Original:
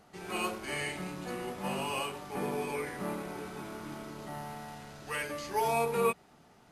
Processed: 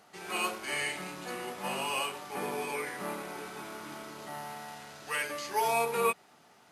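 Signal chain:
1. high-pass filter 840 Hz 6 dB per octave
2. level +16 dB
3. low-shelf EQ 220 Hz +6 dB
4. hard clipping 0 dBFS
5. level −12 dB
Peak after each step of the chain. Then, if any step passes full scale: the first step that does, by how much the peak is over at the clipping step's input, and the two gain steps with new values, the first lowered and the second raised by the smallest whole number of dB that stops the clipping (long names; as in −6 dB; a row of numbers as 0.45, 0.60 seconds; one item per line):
−19.5, −3.5, −3.5, −3.5, −15.5 dBFS
no step passes full scale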